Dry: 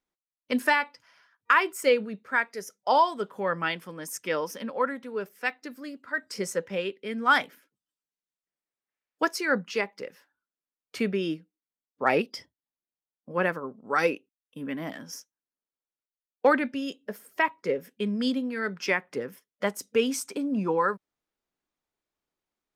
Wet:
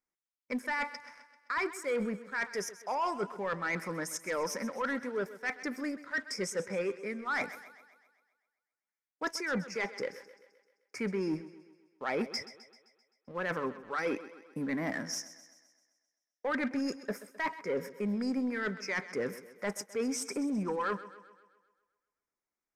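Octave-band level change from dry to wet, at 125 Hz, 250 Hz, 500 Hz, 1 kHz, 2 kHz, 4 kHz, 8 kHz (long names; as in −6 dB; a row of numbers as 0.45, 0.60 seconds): −3.5, −4.0, −7.0, −9.5, −7.0, −7.0, −2.0 decibels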